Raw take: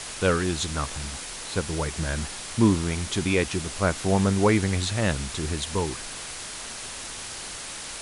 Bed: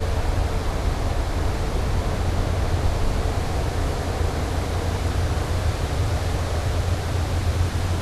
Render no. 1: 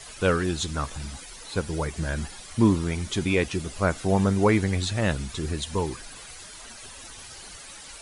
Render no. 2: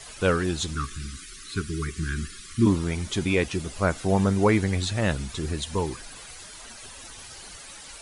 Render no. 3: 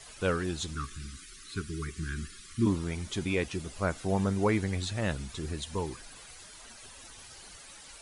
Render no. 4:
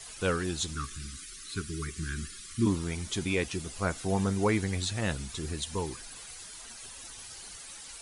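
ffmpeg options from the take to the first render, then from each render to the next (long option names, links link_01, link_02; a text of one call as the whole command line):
ffmpeg -i in.wav -af "afftdn=noise_reduction=12:noise_floor=-37" out.wav
ffmpeg -i in.wav -filter_complex "[0:a]asplit=3[link_01][link_02][link_03];[link_01]afade=type=out:start_time=0.74:duration=0.02[link_04];[link_02]asuperstop=centerf=680:order=20:qfactor=1,afade=type=in:start_time=0.74:duration=0.02,afade=type=out:start_time=2.65:duration=0.02[link_05];[link_03]afade=type=in:start_time=2.65:duration=0.02[link_06];[link_04][link_05][link_06]amix=inputs=3:normalize=0" out.wav
ffmpeg -i in.wav -af "volume=-6.5dB" out.wav
ffmpeg -i in.wav -af "highshelf=frequency=4200:gain=7,bandreject=frequency=590:width=14" out.wav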